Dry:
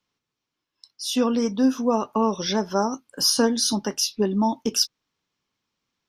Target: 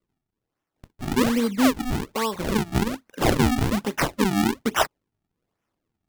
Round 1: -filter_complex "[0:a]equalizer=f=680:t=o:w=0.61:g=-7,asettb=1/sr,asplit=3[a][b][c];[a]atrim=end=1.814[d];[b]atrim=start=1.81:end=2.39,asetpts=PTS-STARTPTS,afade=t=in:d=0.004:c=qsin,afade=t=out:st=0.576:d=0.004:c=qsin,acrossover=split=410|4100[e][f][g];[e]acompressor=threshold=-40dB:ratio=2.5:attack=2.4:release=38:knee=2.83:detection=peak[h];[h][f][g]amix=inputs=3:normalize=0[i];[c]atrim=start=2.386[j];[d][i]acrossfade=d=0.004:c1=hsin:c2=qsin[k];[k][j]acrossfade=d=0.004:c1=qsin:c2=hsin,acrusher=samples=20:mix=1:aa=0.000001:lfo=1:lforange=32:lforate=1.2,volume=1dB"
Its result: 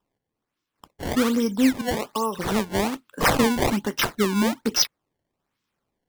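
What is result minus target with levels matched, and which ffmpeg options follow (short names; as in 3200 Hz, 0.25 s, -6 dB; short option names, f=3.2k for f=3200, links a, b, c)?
decimation with a swept rate: distortion -7 dB
-filter_complex "[0:a]equalizer=f=680:t=o:w=0.61:g=-7,asettb=1/sr,asplit=3[a][b][c];[a]atrim=end=1.814[d];[b]atrim=start=1.81:end=2.39,asetpts=PTS-STARTPTS,afade=t=in:d=0.004:c=qsin,afade=t=out:st=0.576:d=0.004:c=qsin,acrossover=split=410|4100[e][f][g];[e]acompressor=threshold=-40dB:ratio=2.5:attack=2.4:release=38:knee=2.83:detection=peak[h];[h][f][g]amix=inputs=3:normalize=0[i];[c]atrim=start=2.386[j];[d][i]acrossfade=d=0.004:c1=hsin:c2=qsin[k];[k][j]acrossfade=d=0.004:c1=qsin:c2=hsin,acrusher=samples=49:mix=1:aa=0.000001:lfo=1:lforange=78.4:lforate=1.2,volume=1dB"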